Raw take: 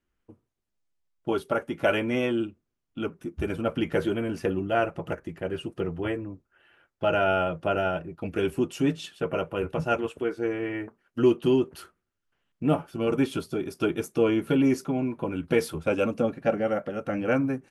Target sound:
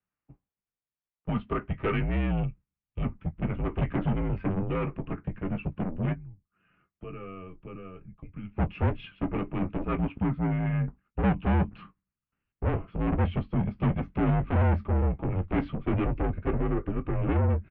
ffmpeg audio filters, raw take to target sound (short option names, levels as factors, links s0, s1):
-filter_complex "[0:a]agate=range=0.447:threshold=0.00282:ratio=16:detection=peak,asubboost=boost=9:cutoff=250,asplit=3[s0][s1][s2];[s0]afade=t=out:st=6.12:d=0.02[s3];[s1]acompressor=threshold=0.01:ratio=3,afade=t=in:st=6.12:d=0.02,afade=t=out:st=8.56:d=0.02[s4];[s2]afade=t=in:st=8.56:d=0.02[s5];[s3][s4][s5]amix=inputs=3:normalize=0,asoftclip=type=tanh:threshold=0.1,asplit=2[s6][s7];[s7]adelay=19,volume=0.237[s8];[s6][s8]amix=inputs=2:normalize=0,highpass=f=240:t=q:w=0.5412,highpass=f=240:t=q:w=1.307,lowpass=f=3000:t=q:w=0.5176,lowpass=f=3000:t=q:w=0.7071,lowpass=f=3000:t=q:w=1.932,afreqshift=-180"